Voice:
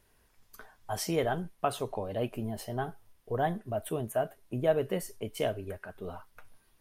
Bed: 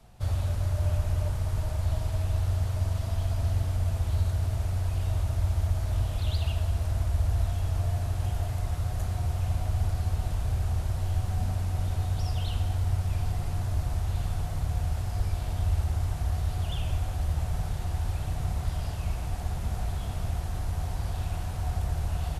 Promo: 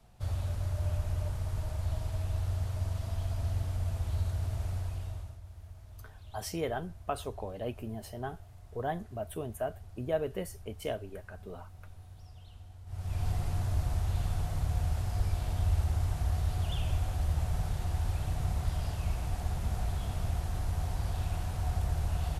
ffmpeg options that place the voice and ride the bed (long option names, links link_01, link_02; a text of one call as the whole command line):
ffmpeg -i stem1.wav -i stem2.wav -filter_complex "[0:a]adelay=5450,volume=-4.5dB[link_01];[1:a]volume=14.5dB,afade=type=out:start_time=4.72:duration=0.68:silence=0.149624,afade=type=in:start_time=12.86:duration=0.43:silence=0.1[link_02];[link_01][link_02]amix=inputs=2:normalize=0" out.wav